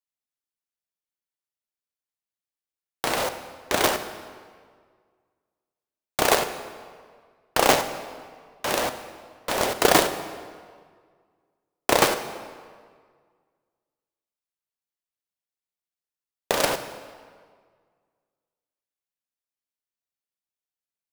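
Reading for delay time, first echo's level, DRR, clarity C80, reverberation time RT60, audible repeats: no echo, no echo, 10.0 dB, 11.5 dB, 1.8 s, no echo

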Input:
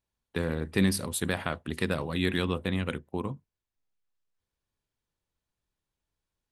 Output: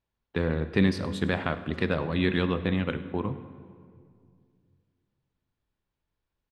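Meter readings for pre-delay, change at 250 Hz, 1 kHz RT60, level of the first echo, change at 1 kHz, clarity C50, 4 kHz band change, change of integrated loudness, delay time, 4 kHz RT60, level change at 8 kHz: 14 ms, +3.0 dB, 2.0 s, -20.5 dB, +2.5 dB, 12.5 dB, -1.0 dB, +2.5 dB, 103 ms, 1.4 s, under -15 dB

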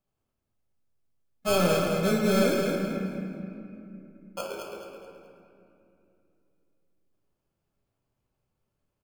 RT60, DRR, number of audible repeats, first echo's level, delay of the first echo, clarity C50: 2.7 s, -1.5 dB, 2, -6.0 dB, 214 ms, 0.5 dB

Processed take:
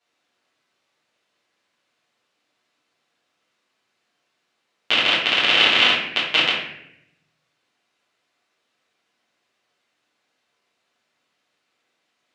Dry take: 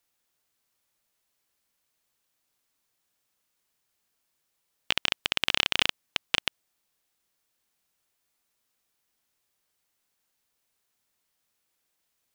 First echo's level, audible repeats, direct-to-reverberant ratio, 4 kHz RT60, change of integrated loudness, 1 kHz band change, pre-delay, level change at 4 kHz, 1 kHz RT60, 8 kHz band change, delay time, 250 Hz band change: no echo, no echo, -10.5 dB, 0.55 s, +10.5 dB, +11.5 dB, 8 ms, +10.0 dB, 0.65 s, +0.5 dB, no echo, +11.5 dB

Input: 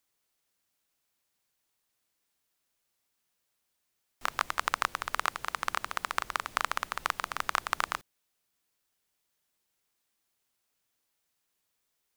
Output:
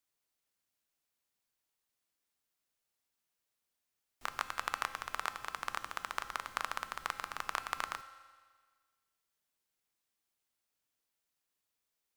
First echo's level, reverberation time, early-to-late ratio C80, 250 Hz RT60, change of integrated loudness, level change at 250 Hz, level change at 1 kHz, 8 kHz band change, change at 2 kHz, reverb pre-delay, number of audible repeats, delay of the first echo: no echo, 1.6 s, 13.5 dB, 1.6 s, -6.5 dB, -6.5 dB, -6.5 dB, -6.5 dB, -6.5 dB, 4 ms, no echo, no echo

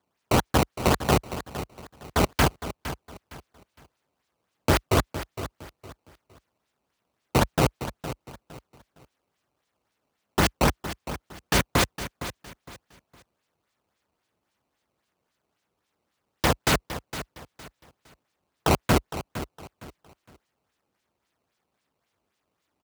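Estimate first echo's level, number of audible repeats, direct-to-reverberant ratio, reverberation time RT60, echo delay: -12.5 dB, 3, no reverb, no reverb, 461 ms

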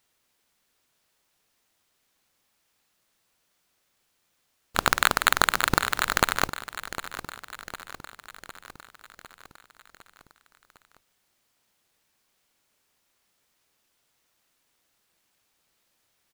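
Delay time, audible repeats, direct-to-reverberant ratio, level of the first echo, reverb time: 755 ms, 5, no reverb, -13.5 dB, no reverb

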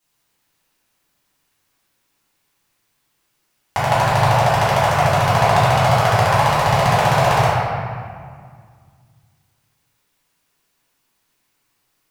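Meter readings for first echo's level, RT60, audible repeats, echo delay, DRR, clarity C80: no echo, 2.0 s, no echo, no echo, -12.5 dB, -0.5 dB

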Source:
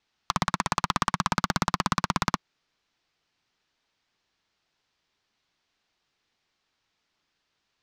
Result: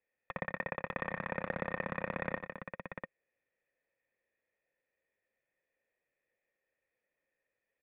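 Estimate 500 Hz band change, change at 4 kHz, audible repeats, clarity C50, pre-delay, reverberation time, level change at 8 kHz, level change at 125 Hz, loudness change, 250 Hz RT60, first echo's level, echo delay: 0.0 dB, -27.0 dB, 3, no reverb, no reverb, no reverb, under -40 dB, -12.5 dB, -12.0 dB, no reverb, -14.0 dB, 85 ms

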